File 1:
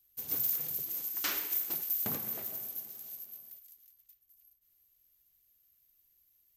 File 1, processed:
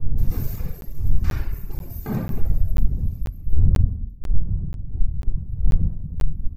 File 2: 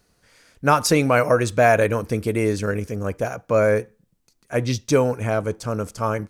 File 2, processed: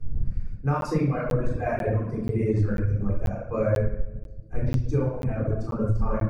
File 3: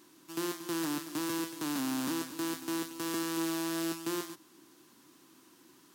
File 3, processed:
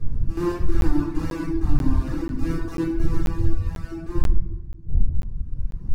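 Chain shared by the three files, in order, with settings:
wind on the microphone 98 Hz −39 dBFS
pitch vibrato 5.7 Hz 6.8 cents
mains-hum notches 60/120 Hz
rectangular room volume 970 cubic metres, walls mixed, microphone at 3.8 metres
reverb reduction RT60 1.6 s
RIAA equalisation playback
automatic gain control gain up to 4 dB
parametric band 3,200 Hz −10 dB 0.25 octaves
on a send: tape delay 68 ms, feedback 41%, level −9 dB, low-pass 3,800 Hz
on the sum: downward compressor, threshold −9 dBFS
notch filter 4,100 Hz, Q 24
regular buffer underruns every 0.49 s, samples 512, zero, from 0:00.81
loudness normalisation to −27 LKFS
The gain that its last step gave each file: +1.0, −9.0, −1.0 decibels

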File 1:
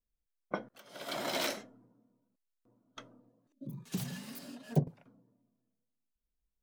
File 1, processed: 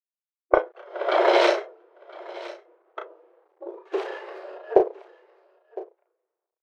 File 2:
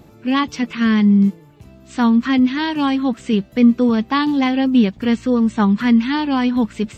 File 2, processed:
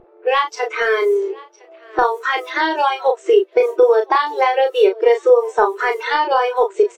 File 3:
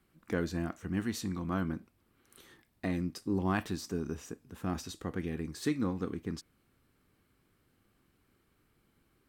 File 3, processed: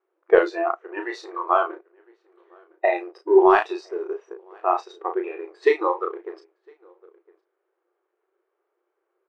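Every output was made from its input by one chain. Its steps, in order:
mu-law and A-law mismatch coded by A
linear-phase brick-wall high-pass 340 Hz
low-pass that shuts in the quiet parts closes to 1,600 Hz, open at −24.5 dBFS
single-tap delay 1,009 ms −21.5 dB
noise reduction from a noise print of the clip's start 15 dB
downward compressor 3 to 1, threshold −36 dBFS
spectral tilt −3.5 dB per octave
double-tracking delay 34 ms −5.5 dB
normalise the peak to −2 dBFS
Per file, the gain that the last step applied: +20.5, +18.0, +22.0 decibels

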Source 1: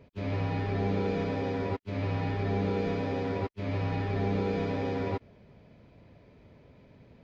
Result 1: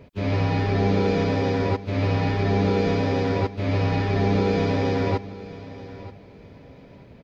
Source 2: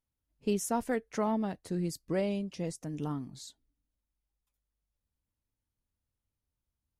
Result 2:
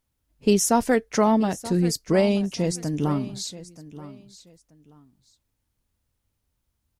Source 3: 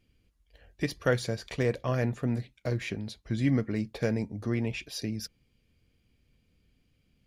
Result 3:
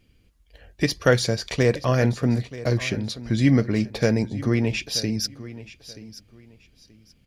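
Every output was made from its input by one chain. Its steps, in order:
dynamic equaliser 5,300 Hz, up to +6 dB, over −57 dBFS, Q 1.5
repeating echo 930 ms, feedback 24%, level −16.5 dB
loudness normalisation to −23 LKFS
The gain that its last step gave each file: +8.0, +11.0, +8.0 decibels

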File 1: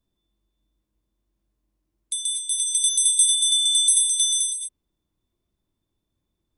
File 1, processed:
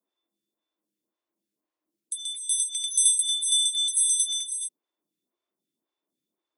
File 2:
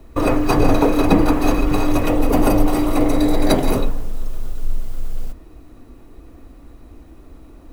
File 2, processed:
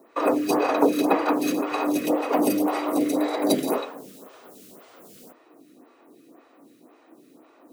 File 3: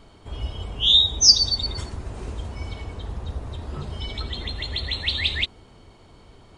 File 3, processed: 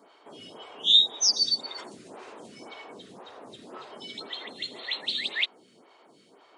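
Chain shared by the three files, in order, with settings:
Bessel high-pass filter 290 Hz, order 6
phaser with staggered stages 1.9 Hz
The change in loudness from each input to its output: −4.5, −5.5, −4.5 LU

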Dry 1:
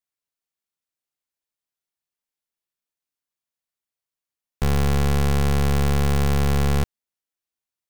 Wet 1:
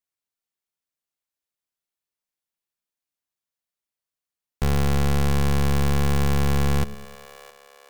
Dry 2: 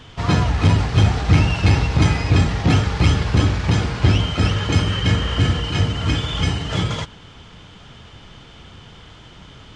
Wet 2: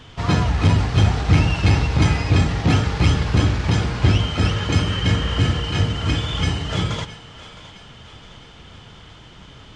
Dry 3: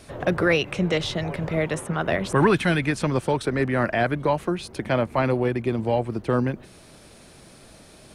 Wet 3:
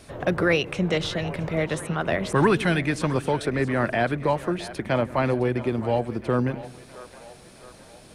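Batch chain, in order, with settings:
echo with a time of its own for lows and highs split 470 Hz, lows 104 ms, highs 664 ms, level −15.5 dB
level −1 dB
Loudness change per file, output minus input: −1.5, −1.0, −1.0 LU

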